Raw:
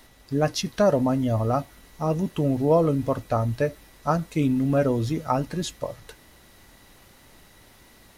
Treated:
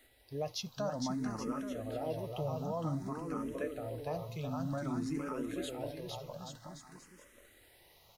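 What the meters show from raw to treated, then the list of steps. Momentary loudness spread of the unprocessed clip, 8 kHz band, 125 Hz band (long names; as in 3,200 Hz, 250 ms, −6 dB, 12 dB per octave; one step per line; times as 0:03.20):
10 LU, −10.0 dB, −14.5 dB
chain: low-shelf EQ 280 Hz −5.5 dB
brickwall limiter −18.5 dBFS, peak gain reduction 8.5 dB
bouncing-ball delay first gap 460 ms, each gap 0.8×, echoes 5
bit-depth reduction 12 bits, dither triangular
frequency shifter mixed with the dry sound +0.53 Hz
level −8 dB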